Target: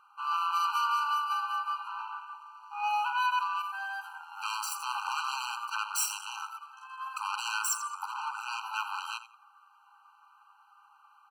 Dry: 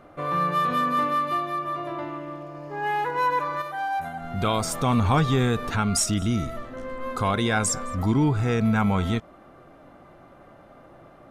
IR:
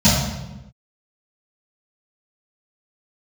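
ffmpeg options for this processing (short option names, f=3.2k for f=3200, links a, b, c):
-filter_complex "[0:a]acrossover=split=460|1600[a][b][c];[b]alimiter=limit=-23.5dB:level=0:latency=1[d];[a][d][c]amix=inputs=3:normalize=0,aecho=1:1:86|172|258:0.251|0.0678|0.0183,aeval=exprs='0.335*(cos(1*acos(clip(val(0)/0.335,-1,1)))-cos(1*PI/2))+0.0668*(cos(8*acos(clip(val(0)/0.335,-1,1)))-cos(8*PI/2))':c=same,afftfilt=real='re*eq(mod(floor(b*sr/1024/790),2),1)':imag='im*eq(mod(floor(b*sr/1024/790),2),1)':win_size=1024:overlap=0.75,volume=-3.5dB"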